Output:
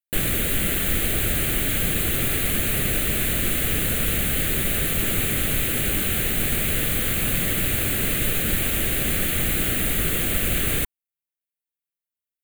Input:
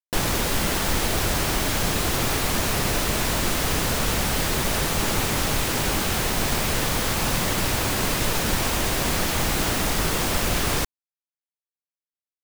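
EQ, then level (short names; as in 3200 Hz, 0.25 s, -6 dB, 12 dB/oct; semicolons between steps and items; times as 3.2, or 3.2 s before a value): bell 1000 Hz +5 dB 0.26 oct; high shelf 6700 Hz +8 dB; fixed phaser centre 2300 Hz, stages 4; 0.0 dB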